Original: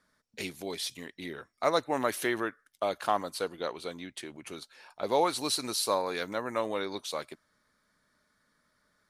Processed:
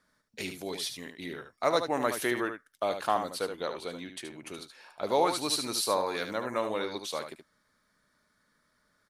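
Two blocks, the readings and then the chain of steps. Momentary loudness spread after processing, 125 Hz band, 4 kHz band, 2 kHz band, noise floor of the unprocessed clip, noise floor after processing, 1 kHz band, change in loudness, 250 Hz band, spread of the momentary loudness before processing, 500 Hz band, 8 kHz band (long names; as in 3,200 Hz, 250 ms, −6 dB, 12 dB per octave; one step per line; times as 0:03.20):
15 LU, +0.5 dB, +0.5 dB, +0.5 dB, −74 dBFS, −73 dBFS, +0.5 dB, +0.5 dB, +0.5 dB, 15 LU, +0.5 dB, +0.5 dB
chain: single-tap delay 74 ms −8 dB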